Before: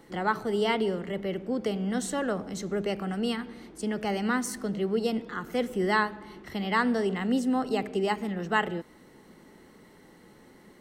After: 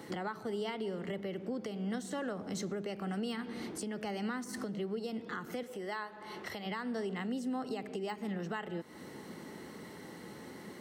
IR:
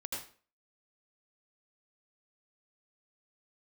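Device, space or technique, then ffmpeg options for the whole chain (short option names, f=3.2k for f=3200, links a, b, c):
broadcast voice chain: -filter_complex "[0:a]highpass=f=78:w=0.5412,highpass=f=78:w=1.3066,deesser=0.8,acompressor=threshold=-41dB:ratio=4,equalizer=f=4.9k:t=o:w=0.77:g=2,alimiter=level_in=10.5dB:limit=-24dB:level=0:latency=1:release=273,volume=-10.5dB,asettb=1/sr,asplit=3[a][b][c];[a]atrim=end=5.634[d];[b]atrim=start=5.63:end=6.66,asetpts=PTS-STARTPTS,afade=t=in:d=0.004:c=qsin,afade=t=out:st=1.026:d=0.004:c=qsin,lowshelf=f=390:t=q:w=1.5:g=-6.5[e];[c]atrim=start=6.656[f];[d][e]acrossfade=d=0.004:c1=hsin:c2=qsin[g];[g][f]acrossfade=d=0.004:c1=qsin:c2=hsin,volume=6dB"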